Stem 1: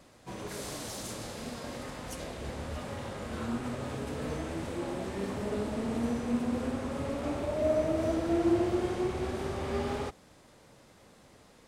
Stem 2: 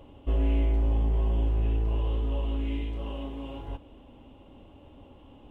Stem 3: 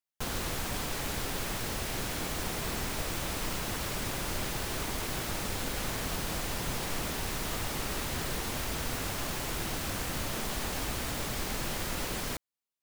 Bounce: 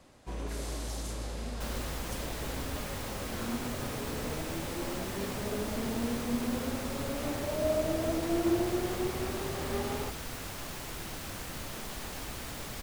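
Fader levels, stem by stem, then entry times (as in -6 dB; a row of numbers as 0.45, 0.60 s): -2.0, -14.5, -6.0 dB; 0.00, 0.00, 1.40 s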